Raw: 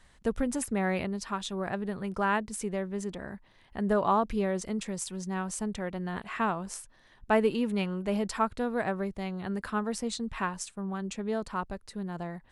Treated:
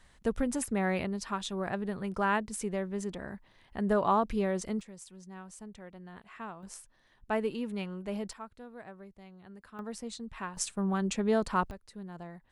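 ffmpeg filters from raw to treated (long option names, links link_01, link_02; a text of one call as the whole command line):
ffmpeg -i in.wav -af "asetnsamples=nb_out_samples=441:pad=0,asendcmd='4.81 volume volume -13.5dB;6.63 volume volume -6.5dB;8.33 volume volume -17dB;9.79 volume volume -7.5dB;10.57 volume volume 4.5dB;11.71 volume volume -7.5dB',volume=-1dB" out.wav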